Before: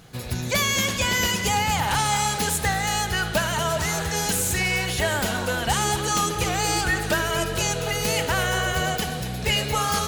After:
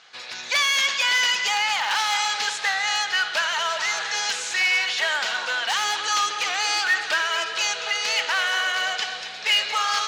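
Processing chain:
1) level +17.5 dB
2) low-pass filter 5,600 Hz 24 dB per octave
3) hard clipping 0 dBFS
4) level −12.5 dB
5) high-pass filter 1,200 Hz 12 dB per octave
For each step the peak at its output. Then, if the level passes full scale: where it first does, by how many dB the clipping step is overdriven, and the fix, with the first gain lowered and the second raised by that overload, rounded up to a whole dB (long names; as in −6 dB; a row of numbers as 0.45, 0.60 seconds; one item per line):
+7.0, +7.0, 0.0, −12.5, −9.5 dBFS
step 1, 7.0 dB
step 1 +10.5 dB, step 4 −5.5 dB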